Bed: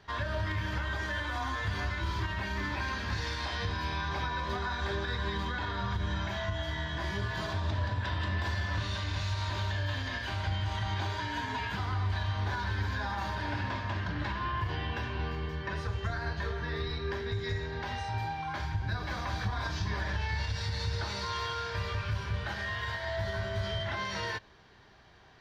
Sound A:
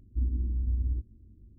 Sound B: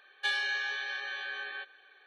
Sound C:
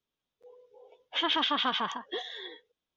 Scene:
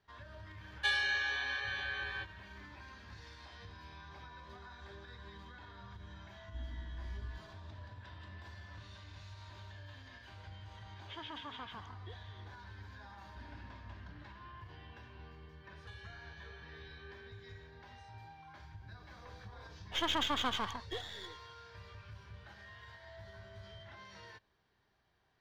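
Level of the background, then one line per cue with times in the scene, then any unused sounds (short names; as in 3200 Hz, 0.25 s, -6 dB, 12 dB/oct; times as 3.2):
bed -18.5 dB
0.6 add B -1 dB
6.38 add A -15 dB
9.94 add C -17.5 dB + high shelf 5200 Hz -9.5 dB
13.19 add A -17 dB + HPF 100 Hz
15.64 add B -5.5 dB + compressor 4:1, threshold -51 dBFS
18.79 add C -3.5 dB + half-wave gain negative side -7 dB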